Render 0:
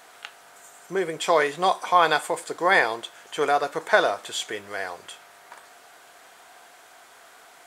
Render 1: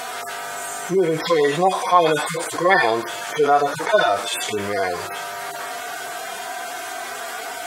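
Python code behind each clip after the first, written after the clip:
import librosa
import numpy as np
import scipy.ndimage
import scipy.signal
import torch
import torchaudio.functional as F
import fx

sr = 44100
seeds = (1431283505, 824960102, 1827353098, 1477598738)

y = fx.hpss_only(x, sr, part='harmonic')
y = fx.env_flatten(y, sr, amount_pct=50)
y = F.gain(torch.from_numpy(y), 3.5).numpy()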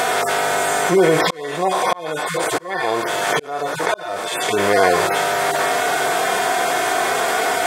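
y = fx.bin_compress(x, sr, power=0.6)
y = fx.auto_swell(y, sr, attack_ms=774.0)
y = F.gain(torch.from_numpy(y), 2.5).numpy()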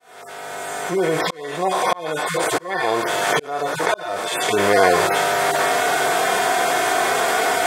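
y = fx.fade_in_head(x, sr, length_s=2.06)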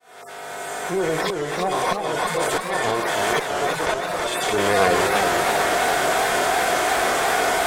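y = fx.diode_clip(x, sr, knee_db=-14.0)
y = fx.echo_warbled(y, sr, ms=331, feedback_pct=57, rate_hz=2.8, cents=163, wet_db=-5.0)
y = F.gain(torch.from_numpy(y), -1.5).numpy()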